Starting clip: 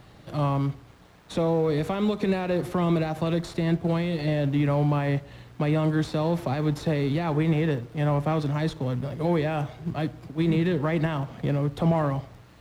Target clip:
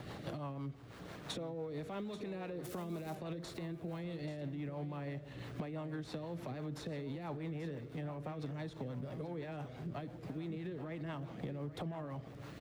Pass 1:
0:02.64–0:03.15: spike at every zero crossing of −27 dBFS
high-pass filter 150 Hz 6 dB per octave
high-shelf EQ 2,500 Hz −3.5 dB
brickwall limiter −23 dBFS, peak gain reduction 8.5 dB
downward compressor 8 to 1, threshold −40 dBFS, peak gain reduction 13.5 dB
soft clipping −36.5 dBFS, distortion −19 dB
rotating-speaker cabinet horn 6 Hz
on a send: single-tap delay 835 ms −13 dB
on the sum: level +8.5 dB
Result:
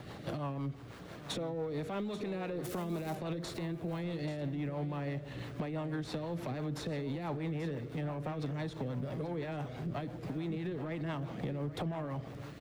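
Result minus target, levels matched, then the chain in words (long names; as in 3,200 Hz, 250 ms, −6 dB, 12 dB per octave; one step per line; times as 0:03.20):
downward compressor: peak gain reduction −6 dB
0:02.64–0:03.15: spike at every zero crossing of −27 dBFS
high-pass filter 150 Hz 6 dB per octave
high-shelf EQ 2,500 Hz −3.5 dB
brickwall limiter −23 dBFS, peak gain reduction 8.5 dB
downward compressor 8 to 1, threshold −47 dBFS, peak gain reduction 19.5 dB
soft clipping −36.5 dBFS, distortion −29 dB
rotating-speaker cabinet horn 6 Hz
on a send: single-tap delay 835 ms −13 dB
on the sum: level +8.5 dB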